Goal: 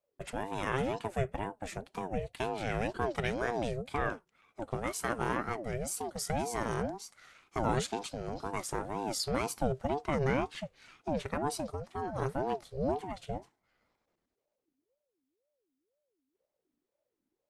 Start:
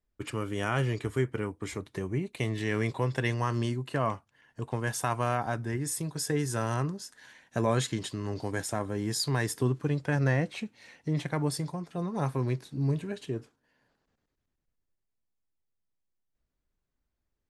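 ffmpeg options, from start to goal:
ffmpeg -i in.wav -af "aeval=exprs='val(0)*sin(2*PI*430*n/s+430*0.4/2*sin(2*PI*2*n/s))':channel_layout=same,volume=-1dB" out.wav

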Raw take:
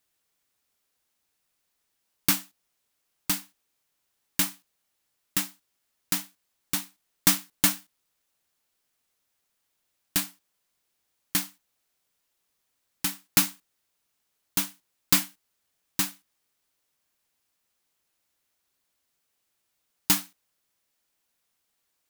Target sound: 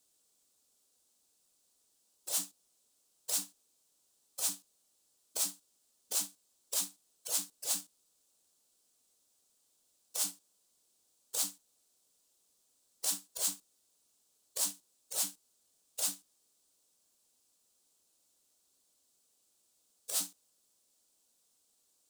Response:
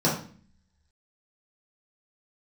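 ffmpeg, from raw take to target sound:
-filter_complex "[0:a]afftfilt=real='re*lt(hypot(re,im),0.0282)':imag='im*lt(hypot(re,im),0.0282)':win_size=1024:overlap=0.75,equalizer=frequency=125:width_type=o:width=1:gain=-3,equalizer=frequency=250:width_type=o:width=1:gain=5,equalizer=frequency=500:width_type=o:width=1:gain=5,equalizer=frequency=2000:width_type=o:width=1:gain=-9,equalizer=frequency=4000:width_type=o:width=1:gain=4,equalizer=frequency=8000:width_type=o:width=1:gain=11,asplit=2[link_01][link_02];[link_02]acrusher=bits=6:mix=0:aa=0.000001,volume=-11dB[link_03];[link_01][link_03]amix=inputs=2:normalize=0,volume=-2dB"

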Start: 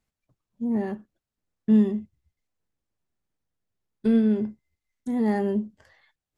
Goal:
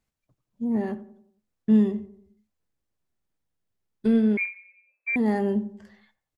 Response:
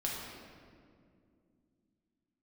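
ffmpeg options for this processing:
-filter_complex "[0:a]asplit=2[link_01][link_02];[link_02]adelay=90,lowpass=frequency=1300:poles=1,volume=-15.5dB,asplit=2[link_03][link_04];[link_04]adelay=90,lowpass=frequency=1300:poles=1,volume=0.5,asplit=2[link_05][link_06];[link_06]adelay=90,lowpass=frequency=1300:poles=1,volume=0.5,asplit=2[link_07][link_08];[link_08]adelay=90,lowpass=frequency=1300:poles=1,volume=0.5,asplit=2[link_09][link_10];[link_10]adelay=90,lowpass=frequency=1300:poles=1,volume=0.5[link_11];[link_01][link_03][link_05][link_07][link_09][link_11]amix=inputs=6:normalize=0,asettb=1/sr,asplit=3[link_12][link_13][link_14];[link_12]atrim=end=4.374[link_15];[link_13]atrim=start=4.37:end=5.16,asetpts=PTS-STARTPTS,afade=type=in:duration=0.004:curve=qsin,afade=type=out:start_time=0.786:duration=0.004:curve=qsin,lowpass=frequency=2200:width_type=q:width=0.5098,lowpass=frequency=2200:width_type=q:width=0.6013,lowpass=frequency=2200:width_type=q:width=0.9,lowpass=frequency=2200:width_type=q:width=2.563,afreqshift=-2600[link_16];[link_14]atrim=start=5.156[link_17];[link_15][link_16]acrossfade=duration=0.004:curve1=hsin:curve2=qsin[link_18];[link_18][link_17]acrossfade=duration=0.004:curve1=qsin:curve2=hsin"

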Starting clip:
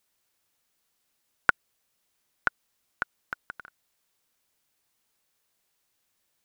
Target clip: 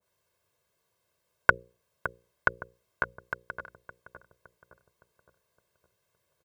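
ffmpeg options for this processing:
ffmpeg -i in.wav -filter_complex "[0:a]highpass=70,tiltshelf=frequency=1300:gain=7,bandreject=frequency=60:width_type=h:width=6,bandreject=frequency=120:width_type=h:width=6,bandreject=frequency=180:width_type=h:width=6,bandreject=frequency=240:width_type=h:width=6,bandreject=frequency=300:width_type=h:width=6,bandreject=frequency=360:width_type=h:width=6,bandreject=frequency=420:width_type=h:width=6,bandreject=frequency=480:width_type=h:width=6,bandreject=frequency=540:width_type=h:width=6,aecho=1:1:1.9:0.87,asplit=2[link_01][link_02];[link_02]adelay=564,lowpass=frequency=1200:poles=1,volume=-10dB,asplit=2[link_03][link_04];[link_04]adelay=564,lowpass=frequency=1200:poles=1,volume=0.52,asplit=2[link_05][link_06];[link_06]adelay=564,lowpass=frequency=1200:poles=1,volume=0.52,asplit=2[link_07][link_08];[link_08]adelay=564,lowpass=frequency=1200:poles=1,volume=0.52,asplit=2[link_09][link_10];[link_10]adelay=564,lowpass=frequency=1200:poles=1,volume=0.52,asplit=2[link_11][link_12];[link_12]adelay=564,lowpass=frequency=1200:poles=1,volume=0.52[link_13];[link_01][link_03][link_05][link_07][link_09][link_11][link_13]amix=inputs=7:normalize=0,adynamicequalizer=threshold=0.01:dfrequency=1700:dqfactor=0.7:tfrequency=1700:tqfactor=0.7:attack=5:release=100:ratio=0.375:range=2:mode=cutabove:tftype=highshelf" out.wav

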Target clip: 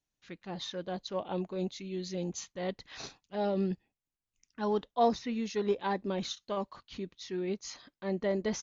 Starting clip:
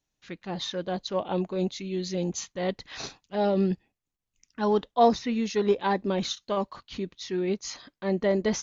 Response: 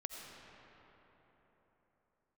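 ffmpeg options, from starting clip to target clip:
-af "aresample=22050,aresample=44100,volume=-6.5dB"

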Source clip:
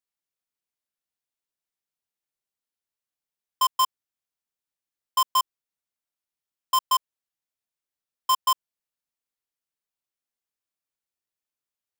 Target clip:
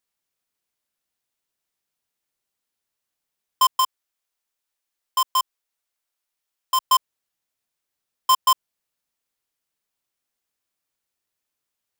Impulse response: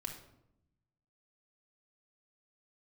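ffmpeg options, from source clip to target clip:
-filter_complex "[0:a]asettb=1/sr,asplit=3[link_01][link_02][link_03];[link_01]atrim=end=3.804[link_04];[link_02]atrim=start=3.8:end=6.85,asetpts=PTS-STARTPTS,afade=type=in:duration=0.004:curve=qsin,afade=type=out:start_time=3.046:duration=0.004:curve=qsin,equalizer=frequency=140:width_type=o:width=1.9:gain=-13.5[link_05];[link_03]atrim=start=6.846[link_06];[link_04][link_05]acrossfade=duration=0.004:curve1=hsin:curve2=qsin[link_07];[link_07][link_06]acrossfade=duration=0.004:curve1=qsin:curve2=hsin,alimiter=limit=-22dB:level=0:latency=1,volume=8dB"

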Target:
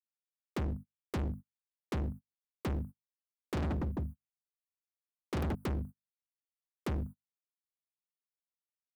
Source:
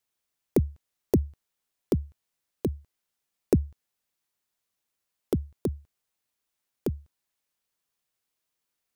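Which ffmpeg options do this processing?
ffmpeg -i in.wav -filter_complex "[0:a]asuperstop=centerf=3800:order=12:qfactor=0.51,bandreject=frequency=50:width_type=h:width=6,bandreject=frequency=100:width_type=h:width=6,bandreject=frequency=150:width_type=h:width=6,bandreject=frequency=200:width_type=h:width=6,bandreject=frequency=250:width_type=h:width=6,asettb=1/sr,asplit=3[link_01][link_02][link_03];[link_01]atrim=end=3.534[link_04];[link_02]atrim=start=3.53:end=5.55,asetpts=PTS-STARTPTS,afade=type=in:duration=0.004:curve=qsin,afade=type=out:start_time=2.016:duration=0.004:curve=qsin,aecho=1:1:40|96|174.4|284.2|437.8:0.631|0.398|0.251|0.158|0.1,atrim=end_sample=89082[link_05];[link_03]atrim=start=5.546[link_06];[link_04][link_05]acrossfade=duration=0.004:curve1=hsin:curve2=qsin[link_07];[link_07][link_06]acrossfade=duration=0.004:curve1=qsin:curve2=hsin,adynamicequalizer=threshold=0.0178:dfrequency=210:dqfactor=1.6:tfrequency=210:tqfactor=1.6:attack=5:release=100:ratio=0.375:range=2:mode=boostabove:tftype=bell,dynaudnorm=framelen=110:gausssize=9:maxgain=16.5dB,bass=frequency=250:gain=6,treble=frequency=4000:gain=1,asoftclip=type=tanh:threshold=-15.5dB,agate=range=-39dB:threshold=-35dB:ratio=16:detection=peak,volume=28.5dB,asoftclip=hard,volume=-28.5dB,volume=-3.5dB" out.wav

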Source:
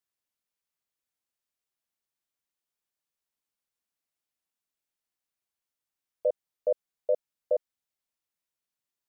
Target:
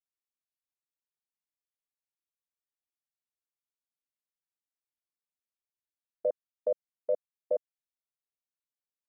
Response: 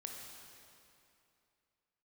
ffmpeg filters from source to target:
-af "afwtdn=0.00891,alimiter=limit=-21.5dB:level=0:latency=1:release=205,volume=2dB"

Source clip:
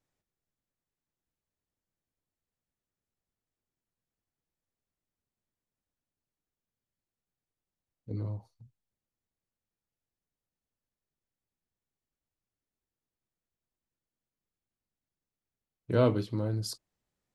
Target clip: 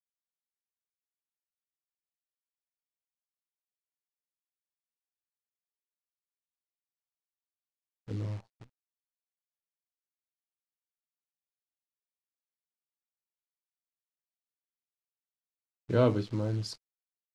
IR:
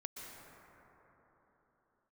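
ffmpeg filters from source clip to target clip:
-af "acrusher=bits=9:dc=4:mix=0:aa=0.000001,lowpass=5900"

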